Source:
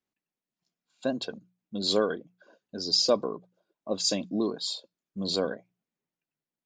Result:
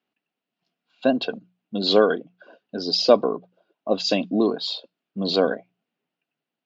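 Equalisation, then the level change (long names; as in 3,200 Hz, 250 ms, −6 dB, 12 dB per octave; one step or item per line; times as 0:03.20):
loudspeaker in its box 140–4,500 Hz, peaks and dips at 260 Hz +4 dB, 440 Hz +3 dB, 710 Hz +7 dB, 1,400 Hz +4 dB, 2,800 Hz +8 dB
+6.0 dB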